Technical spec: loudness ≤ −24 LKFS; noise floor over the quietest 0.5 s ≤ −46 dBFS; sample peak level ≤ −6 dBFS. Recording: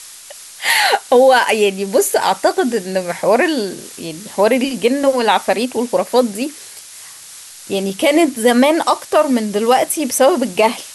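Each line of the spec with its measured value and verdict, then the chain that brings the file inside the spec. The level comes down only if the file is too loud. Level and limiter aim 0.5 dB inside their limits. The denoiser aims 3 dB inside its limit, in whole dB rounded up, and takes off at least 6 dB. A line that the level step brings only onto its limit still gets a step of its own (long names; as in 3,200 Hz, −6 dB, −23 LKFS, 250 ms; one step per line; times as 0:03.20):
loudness −15.0 LKFS: out of spec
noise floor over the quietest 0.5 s −37 dBFS: out of spec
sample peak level −2.0 dBFS: out of spec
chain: level −9.5 dB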